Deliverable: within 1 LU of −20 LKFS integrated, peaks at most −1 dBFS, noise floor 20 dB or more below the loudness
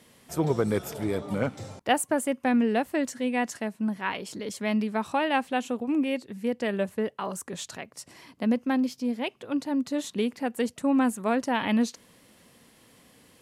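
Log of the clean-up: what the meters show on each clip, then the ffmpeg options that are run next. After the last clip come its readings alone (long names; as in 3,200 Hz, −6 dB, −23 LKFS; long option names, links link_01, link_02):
integrated loudness −28.0 LKFS; sample peak −10.0 dBFS; target loudness −20.0 LKFS
→ -af "volume=8dB"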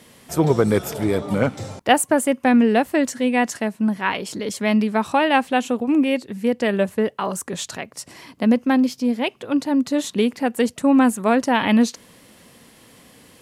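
integrated loudness −20.0 LKFS; sample peak −2.0 dBFS; background noise floor −51 dBFS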